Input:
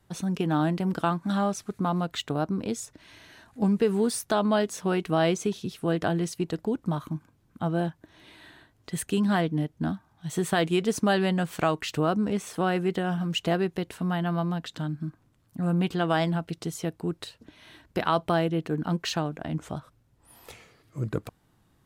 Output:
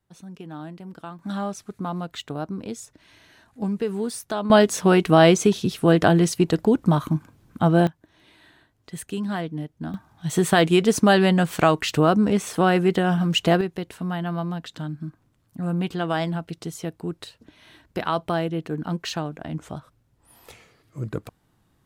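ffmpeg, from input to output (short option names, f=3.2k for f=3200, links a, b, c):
-af "asetnsamples=n=441:p=0,asendcmd='1.19 volume volume -2.5dB;4.5 volume volume 9.5dB;7.87 volume volume -3.5dB;9.94 volume volume 7dB;13.61 volume volume 0dB',volume=-12dB"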